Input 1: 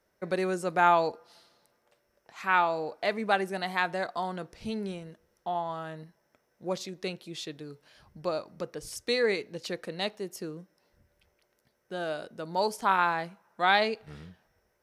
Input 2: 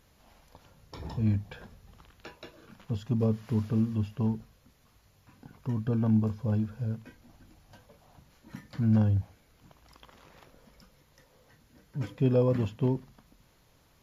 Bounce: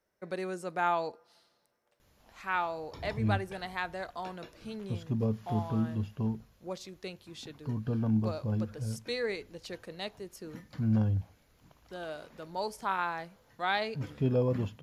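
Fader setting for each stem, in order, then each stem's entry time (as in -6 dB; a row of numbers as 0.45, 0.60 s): -7.0, -3.5 dB; 0.00, 2.00 s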